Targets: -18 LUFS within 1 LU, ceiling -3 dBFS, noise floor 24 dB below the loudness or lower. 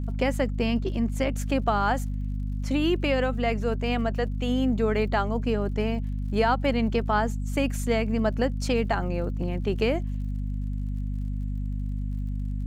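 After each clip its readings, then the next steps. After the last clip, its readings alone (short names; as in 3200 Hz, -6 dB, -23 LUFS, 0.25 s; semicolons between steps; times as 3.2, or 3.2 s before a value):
ticks 45/s; hum 50 Hz; harmonics up to 250 Hz; hum level -27 dBFS; loudness -27.0 LUFS; peak -11.0 dBFS; loudness target -18.0 LUFS
-> de-click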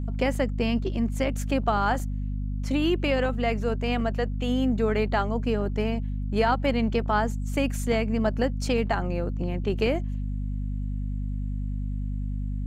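ticks 0.079/s; hum 50 Hz; harmonics up to 250 Hz; hum level -27 dBFS
-> de-hum 50 Hz, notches 5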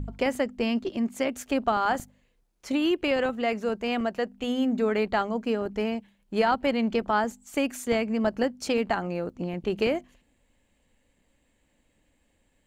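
hum none; loudness -27.5 LUFS; peak -11.5 dBFS; loudness target -18.0 LUFS
-> gain +9.5 dB; limiter -3 dBFS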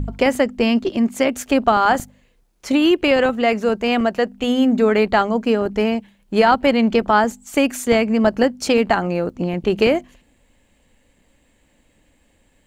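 loudness -18.0 LUFS; peak -3.0 dBFS; noise floor -60 dBFS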